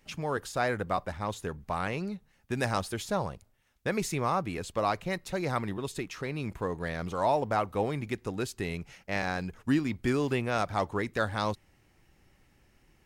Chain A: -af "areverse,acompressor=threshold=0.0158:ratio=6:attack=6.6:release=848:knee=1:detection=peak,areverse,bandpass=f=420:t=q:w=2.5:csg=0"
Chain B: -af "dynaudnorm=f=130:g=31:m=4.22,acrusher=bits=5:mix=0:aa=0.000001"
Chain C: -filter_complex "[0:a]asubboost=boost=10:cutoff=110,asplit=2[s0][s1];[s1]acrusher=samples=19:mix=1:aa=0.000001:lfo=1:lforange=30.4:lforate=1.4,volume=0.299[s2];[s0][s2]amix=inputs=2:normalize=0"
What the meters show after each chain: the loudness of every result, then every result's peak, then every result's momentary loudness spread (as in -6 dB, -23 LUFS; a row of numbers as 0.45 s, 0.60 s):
-50.0 LUFS, -21.5 LUFS, -27.0 LUFS; -34.5 dBFS, -3.5 dBFS, -7.5 dBFS; 6 LU, 14 LU, 8 LU